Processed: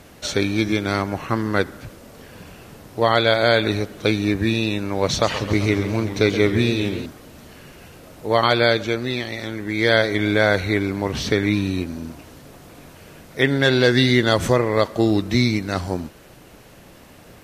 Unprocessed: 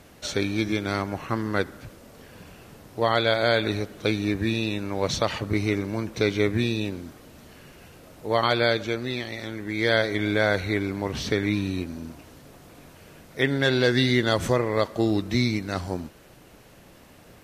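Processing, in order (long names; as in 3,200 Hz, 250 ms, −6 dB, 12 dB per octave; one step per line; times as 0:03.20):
0:05.05–0:07.06: feedback echo with a swinging delay time 131 ms, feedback 71%, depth 212 cents, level −12 dB
level +5 dB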